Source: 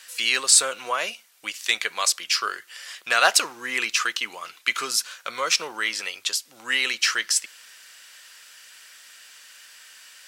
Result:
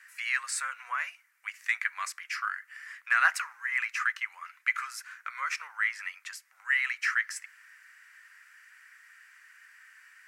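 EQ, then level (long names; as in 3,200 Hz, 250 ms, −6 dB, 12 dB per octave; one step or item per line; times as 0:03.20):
high-pass filter 1,100 Hz 24 dB per octave
high shelf with overshoot 2,600 Hz −10 dB, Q 3
−7.0 dB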